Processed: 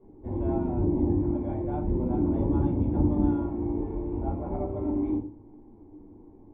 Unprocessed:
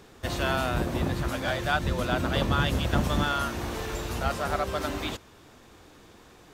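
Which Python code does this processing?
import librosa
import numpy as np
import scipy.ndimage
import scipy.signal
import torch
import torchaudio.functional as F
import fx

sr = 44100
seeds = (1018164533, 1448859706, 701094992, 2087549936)

y = fx.formant_cascade(x, sr, vowel='u')
y = fx.notch(y, sr, hz=630.0, q=12.0)
y = fx.room_shoebox(y, sr, seeds[0], volume_m3=170.0, walls='furnished', distance_m=5.4)
y = fx.dynamic_eq(y, sr, hz=3000.0, q=1.3, threshold_db=-59.0, ratio=4.0, max_db=7)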